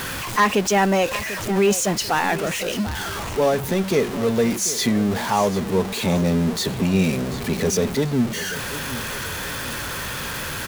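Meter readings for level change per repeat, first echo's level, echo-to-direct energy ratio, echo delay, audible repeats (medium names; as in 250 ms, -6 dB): -8.0 dB, -14.5 dB, -14.0 dB, 742 ms, 2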